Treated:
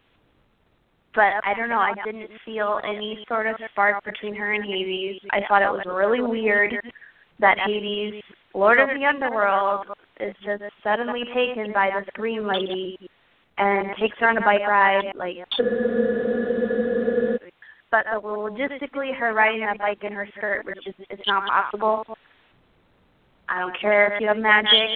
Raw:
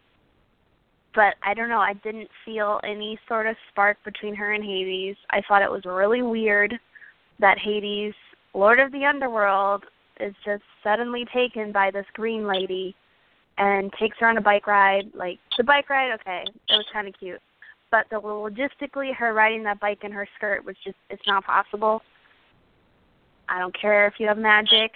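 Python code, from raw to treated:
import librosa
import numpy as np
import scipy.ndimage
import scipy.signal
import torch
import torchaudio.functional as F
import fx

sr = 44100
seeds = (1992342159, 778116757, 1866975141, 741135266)

y = fx.reverse_delay(x, sr, ms=108, wet_db=-9)
y = fx.spec_freeze(y, sr, seeds[0], at_s=15.63, hold_s=1.73)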